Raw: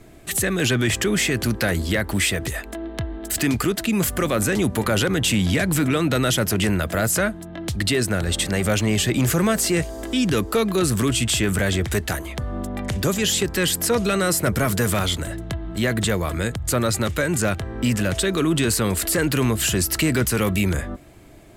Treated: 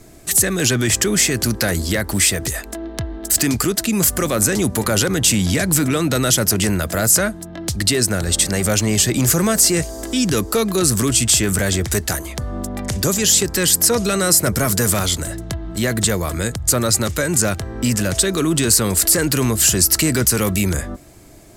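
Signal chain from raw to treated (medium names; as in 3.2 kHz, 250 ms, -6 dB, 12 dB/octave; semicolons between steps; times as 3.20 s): resonant high shelf 4.1 kHz +6.5 dB, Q 1.5; trim +2 dB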